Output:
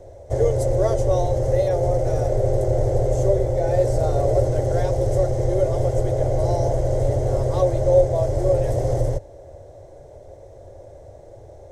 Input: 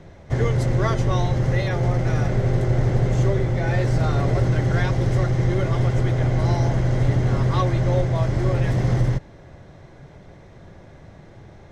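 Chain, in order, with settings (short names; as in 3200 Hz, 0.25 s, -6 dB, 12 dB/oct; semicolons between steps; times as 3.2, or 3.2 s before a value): EQ curve 100 Hz 0 dB, 180 Hz -19 dB, 560 Hz +10 dB, 1200 Hz -13 dB, 2500 Hz -14 dB, 4100 Hz -9 dB, 8200 Hz +6 dB; gain +1.5 dB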